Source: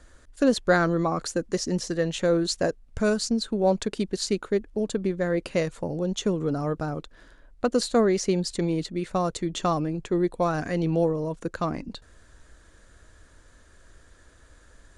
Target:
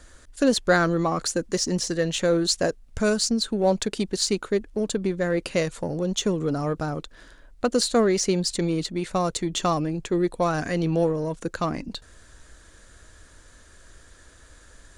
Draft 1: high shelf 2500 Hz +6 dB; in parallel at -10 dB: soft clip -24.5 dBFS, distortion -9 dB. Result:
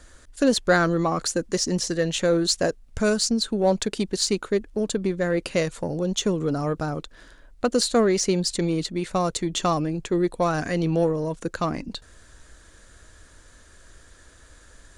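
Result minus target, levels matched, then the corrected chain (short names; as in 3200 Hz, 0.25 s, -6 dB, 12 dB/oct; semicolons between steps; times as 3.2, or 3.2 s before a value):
soft clip: distortion -4 dB
high shelf 2500 Hz +6 dB; in parallel at -10 dB: soft clip -31 dBFS, distortion -5 dB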